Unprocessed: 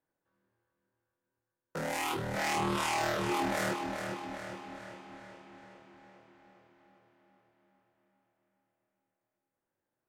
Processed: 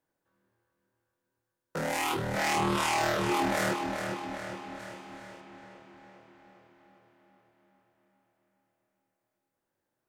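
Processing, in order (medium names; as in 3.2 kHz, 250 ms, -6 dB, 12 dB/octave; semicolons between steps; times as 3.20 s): 4.79–5.41 s: treble shelf 6.3 kHz +7.5 dB; trim +3.5 dB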